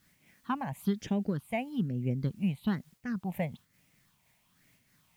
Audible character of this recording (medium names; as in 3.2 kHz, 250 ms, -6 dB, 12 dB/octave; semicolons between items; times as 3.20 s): phasing stages 6, 1.1 Hz, lowest notch 350–1200 Hz; a quantiser's noise floor 12-bit, dither triangular; random flutter of the level